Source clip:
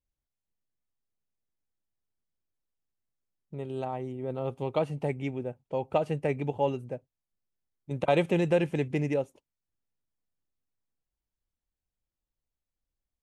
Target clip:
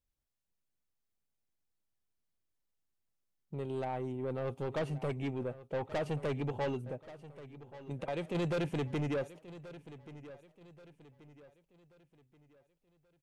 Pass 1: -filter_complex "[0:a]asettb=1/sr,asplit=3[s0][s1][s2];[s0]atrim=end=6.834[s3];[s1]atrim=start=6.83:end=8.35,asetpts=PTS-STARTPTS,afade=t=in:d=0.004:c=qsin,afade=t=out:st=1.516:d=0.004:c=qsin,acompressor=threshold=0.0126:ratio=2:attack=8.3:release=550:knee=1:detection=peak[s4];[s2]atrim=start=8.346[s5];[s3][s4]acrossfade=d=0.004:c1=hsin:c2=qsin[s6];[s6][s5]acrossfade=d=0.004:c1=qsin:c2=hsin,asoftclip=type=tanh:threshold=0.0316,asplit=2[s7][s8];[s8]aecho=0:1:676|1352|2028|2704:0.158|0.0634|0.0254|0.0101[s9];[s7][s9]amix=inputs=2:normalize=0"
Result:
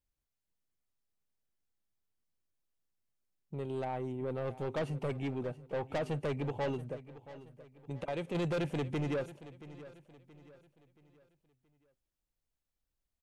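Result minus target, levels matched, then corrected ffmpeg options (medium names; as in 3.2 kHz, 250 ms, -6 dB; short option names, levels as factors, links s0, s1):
echo 455 ms early
-filter_complex "[0:a]asettb=1/sr,asplit=3[s0][s1][s2];[s0]atrim=end=6.834[s3];[s1]atrim=start=6.83:end=8.35,asetpts=PTS-STARTPTS,afade=t=in:d=0.004:c=qsin,afade=t=out:st=1.516:d=0.004:c=qsin,acompressor=threshold=0.0126:ratio=2:attack=8.3:release=550:knee=1:detection=peak[s4];[s2]atrim=start=8.346[s5];[s3][s4]acrossfade=d=0.004:c1=hsin:c2=qsin[s6];[s6][s5]acrossfade=d=0.004:c1=qsin:c2=hsin,asoftclip=type=tanh:threshold=0.0316,asplit=2[s7][s8];[s8]aecho=0:1:1131|2262|3393|4524:0.158|0.0634|0.0254|0.0101[s9];[s7][s9]amix=inputs=2:normalize=0"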